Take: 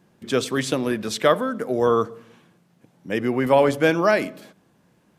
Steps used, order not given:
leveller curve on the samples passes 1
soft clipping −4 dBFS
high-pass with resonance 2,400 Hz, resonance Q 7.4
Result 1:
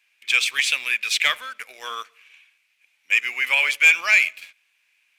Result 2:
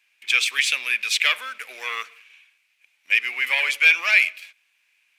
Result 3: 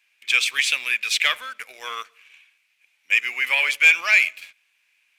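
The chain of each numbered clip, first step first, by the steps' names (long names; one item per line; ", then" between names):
high-pass with resonance, then leveller curve on the samples, then soft clipping
leveller curve on the samples, then soft clipping, then high-pass with resonance
soft clipping, then high-pass with resonance, then leveller curve on the samples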